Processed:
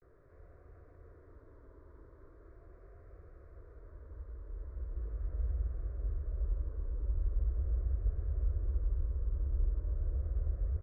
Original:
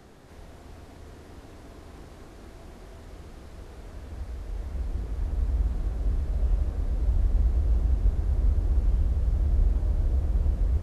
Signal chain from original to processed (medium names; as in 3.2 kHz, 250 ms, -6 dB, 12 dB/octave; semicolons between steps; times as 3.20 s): low-pass 1.4 kHz 12 dB/octave; static phaser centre 800 Hz, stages 6; vibrato 0.4 Hz 81 cents; 4.96–5.52 s: doubling 18 ms -5.5 dB; trim -8.5 dB